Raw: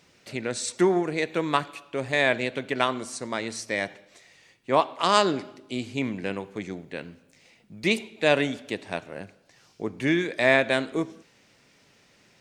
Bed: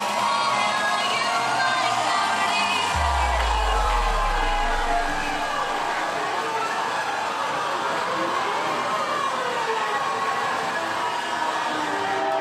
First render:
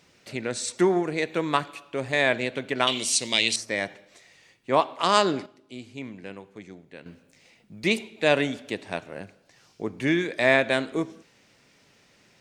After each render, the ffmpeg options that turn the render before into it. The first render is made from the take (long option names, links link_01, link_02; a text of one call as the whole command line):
ffmpeg -i in.wav -filter_complex "[0:a]asettb=1/sr,asplit=3[link_01][link_02][link_03];[link_01]atrim=end=2.874[link_04];[link_02]atrim=start=2.87:end=3.56,asetpts=PTS-STARTPTS,afade=type=in:duration=0.004:curve=qsin,afade=type=out:start_time=0.686:duration=0.004:curve=qsin,highshelf=frequency=2000:width_type=q:width=3:gain=12.5[link_05];[link_03]atrim=start=3.556[link_06];[link_04][link_05]acrossfade=duration=0.004:curve1=hsin:curve2=qsin[link_07];[link_07][link_06]acrossfade=duration=0.004:curve1=qsin:curve2=hsin,asplit=3[link_08][link_09][link_10];[link_08]atrim=end=5.462[link_11];[link_09]atrim=start=5.458:end=7.062,asetpts=PTS-STARTPTS,volume=-9dB[link_12];[link_10]atrim=start=7.058[link_13];[link_11][link_12]acrossfade=duration=0.004:curve1=hsin:curve2=hsin[link_14];[link_14][link_13]acrossfade=duration=0.004:curve1=hsin:curve2=hsin" out.wav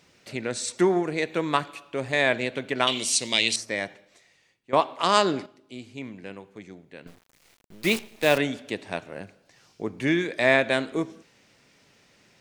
ffmpeg -i in.wav -filter_complex "[0:a]asettb=1/sr,asplit=3[link_01][link_02][link_03];[link_01]atrim=end=7.074[link_04];[link_02]atrim=start=7.07:end=8.38,asetpts=PTS-STARTPTS,afade=type=in:duration=0.004:curve=qsin,afade=type=out:start_time=1.306:duration=0.004:curve=qsin,acrusher=bits=6:dc=4:mix=0:aa=0.000001[link_05];[link_03]atrim=start=8.376[link_06];[link_04][link_05]acrossfade=duration=0.004:curve1=hsin:curve2=qsin[link_07];[link_07][link_06]acrossfade=duration=0.004:curve1=qsin:curve2=hsin,asplit=2[link_08][link_09];[link_08]atrim=end=4.73,asetpts=PTS-STARTPTS,afade=type=out:start_time=3.58:duration=1.15:silence=0.199526[link_10];[link_09]atrim=start=4.73,asetpts=PTS-STARTPTS,afade=type=in:duration=0.004:curve=hsin:silence=0.199526[link_11];[link_10][link_11]concat=n=2:v=0:a=1" out.wav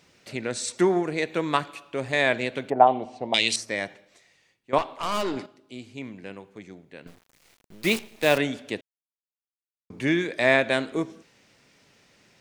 ffmpeg -i in.wav -filter_complex "[0:a]asettb=1/sr,asplit=3[link_01][link_02][link_03];[link_01]atrim=end=2.704[link_04];[link_02]atrim=start=2.7:end=3.34,asetpts=PTS-STARTPTS,afade=type=in:duration=0.004:curve=qsin,afade=type=out:start_time=0.636:duration=0.004:curve=qsin,lowpass=frequency=780:width_type=q:width=8.1[link_05];[link_03]atrim=start=3.336[link_06];[link_04][link_05]acrossfade=duration=0.004:curve1=hsin:curve2=qsin[link_07];[link_07][link_06]acrossfade=duration=0.004:curve1=qsin:curve2=hsin,asettb=1/sr,asplit=3[link_08][link_09][link_10];[link_08]atrim=end=4.784[link_11];[link_09]atrim=start=4.78:end=5.37,asetpts=PTS-STARTPTS,afade=type=in:duration=0.004:curve=qsin,afade=type=out:start_time=0.586:duration=0.004:curve=qsin,aeval=exprs='(tanh(12.6*val(0)+0.4)-tanh(0.4))/12.6':channel_layout=same[link_12];[link_10]atrim=start=5.366[link_13];[link_11][link_12]acrossfade=duration=0.004:curve1=hsin:curve2=qsin[link_14];[link_14][link_13]acrossfade=duration=0.004:curve1=qsin:curve2=hsin,asplit=3[link_15][link_16][link_17];[link_15]atrim=end=8.81,asetpts=PTS-STARTPTS,afade=type=out:start_time=8.806:duration=0.004:curve=hsin[link_18];[link_16]atrim=start=8.81:end=9.9,asetpts=PTS-STARTPTS,volume=0[link_19];[link_17]atrim=start=9.9,asetpts=PTS-STARTPTS,afade=type=in:duration=0.004:curve=hsin[link_20];[link_18][link_19][link_20]concat=n=3:v=0:a=1" out.wav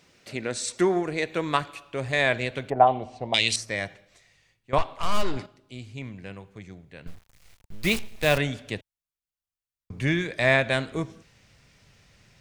ffmpeg -i in.wav -af "bandreject=frequency=890:width=24,asubboost=boost=8:cutoff=100" out.wav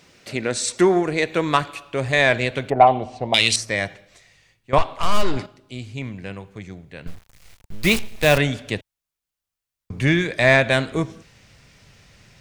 ffmpeg -i in.wav -af "acontrast=68" out.wav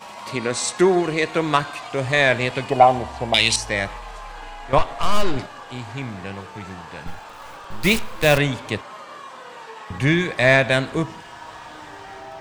ffmpeg -i in.wav -i bed.wav -filter_complex "[1:a]volume=-14dB[link_01];[0:a][link_01]amix=inputs=2:normalize=0" out.wav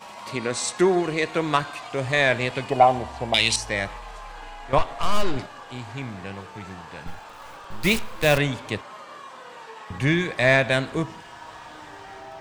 ffmpeg -i in.wav -af "volume=-3dB" out.wav